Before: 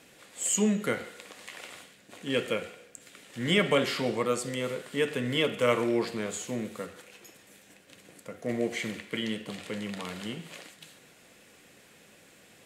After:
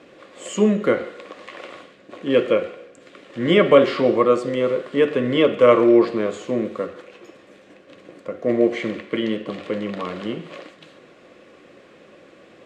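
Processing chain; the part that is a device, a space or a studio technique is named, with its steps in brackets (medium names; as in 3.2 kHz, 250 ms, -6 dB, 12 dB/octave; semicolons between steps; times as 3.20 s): inside a cardboard box (low-pass 3.9 kHz 12 dB/octave; small resonant body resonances 350/540/1100 Hz, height 11 dB, ringing for 20 ms); trim +3.5 dB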